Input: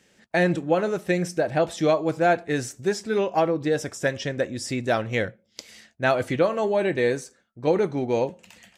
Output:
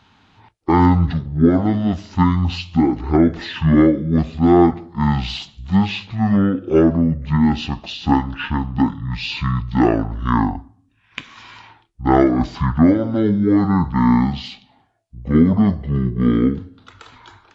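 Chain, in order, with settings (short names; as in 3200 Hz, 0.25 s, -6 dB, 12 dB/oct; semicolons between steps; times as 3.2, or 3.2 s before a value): speed mistake 15 ips tape played at 7.5 ips; gain +7 dB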